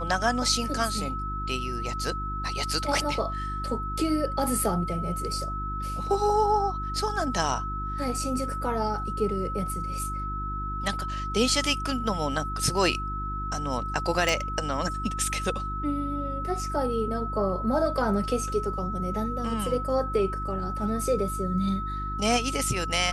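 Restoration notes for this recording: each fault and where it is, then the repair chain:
hum 50 Hz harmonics 7 -34 dBFS
tone 1300 Hz -32 dBFS
14.29 pop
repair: de-click; de-hum 50 Hz, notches 7; notch 1300 Hz, Q 30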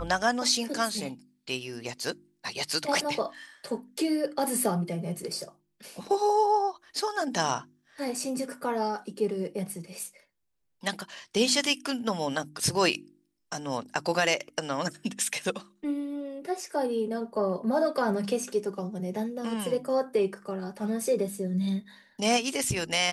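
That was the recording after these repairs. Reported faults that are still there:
none

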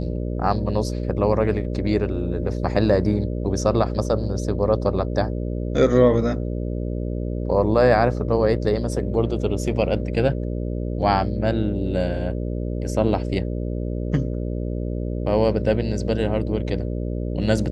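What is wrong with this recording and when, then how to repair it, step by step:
buzz 60 Hz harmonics 10 -26 dBFS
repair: de-hum 60 Hz, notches 10

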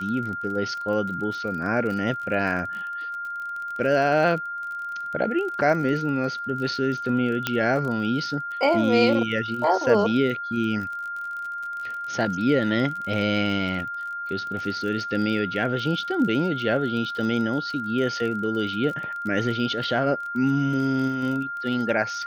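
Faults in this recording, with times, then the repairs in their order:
crackle 31/s -32 dBFS
tone 1400 Hz -29 dBFS
7.47 pop -8 dBFS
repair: de-click; notch 1400 Hz, Q 30

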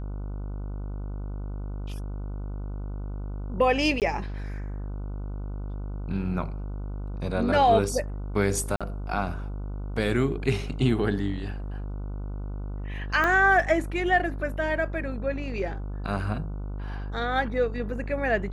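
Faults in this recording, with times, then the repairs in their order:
buzz 50 Hz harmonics 30 -33 dBFS
4–4.02 gap 18 ms
8.76–8.81 gap 46 ms
13.24 pop -13 dBFS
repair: de-click; de-hum 50 Hz, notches 30; interpolate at 4, 18 ms; interpolate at 8.76, 46 ms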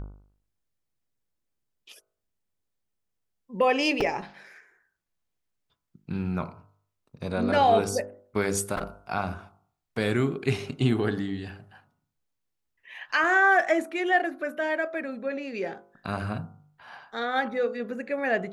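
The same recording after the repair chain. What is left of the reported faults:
13.24 pop

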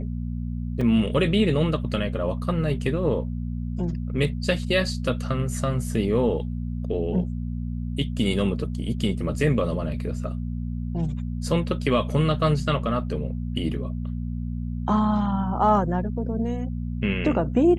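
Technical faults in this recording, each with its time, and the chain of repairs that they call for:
hum 60 Hz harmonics 4 -29 dBFS
0.81 gap 3.9 ms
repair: de-hum 60 Hz, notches 4; interpolate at 0.81, 3.9 ms

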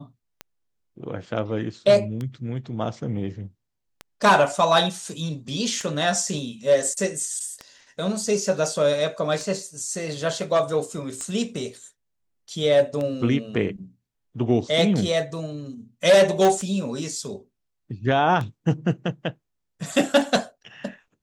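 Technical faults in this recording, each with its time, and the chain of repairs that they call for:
tick 33 1/3 rpm -18 dBFS
16.45 pop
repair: de-click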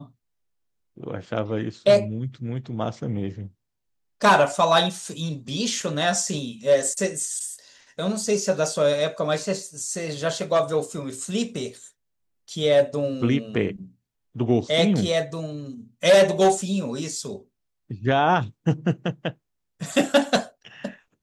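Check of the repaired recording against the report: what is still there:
none

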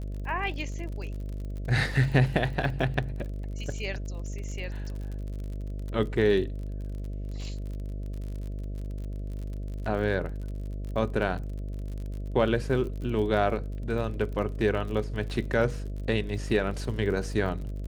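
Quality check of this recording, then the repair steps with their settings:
buzz 50 Hz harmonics 13 -34 dBFS
crackle 43/s -36 dBFS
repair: de-click; de-hum 50 Hz, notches 13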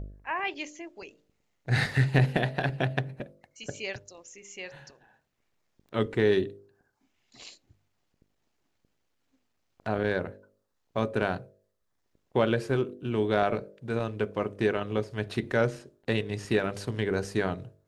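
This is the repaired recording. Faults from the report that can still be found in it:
none

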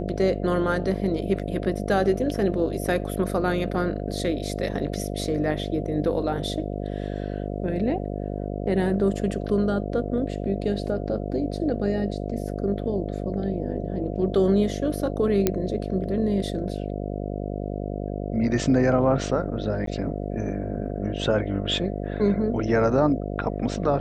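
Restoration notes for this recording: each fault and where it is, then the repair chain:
buzz 50 Hz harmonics 14 -30 dBFS
15.47 pop -6 dBFS
19.86–19.87 gap 13 ms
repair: de-click; de-hum 50 Hz, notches 14; interpolate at 19.86, 13 ms

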